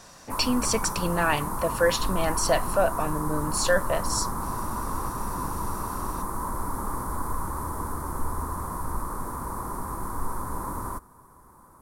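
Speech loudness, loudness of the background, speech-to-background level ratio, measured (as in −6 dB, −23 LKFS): −26.5 LKFS, −32.0 LKFS, 5.5 dB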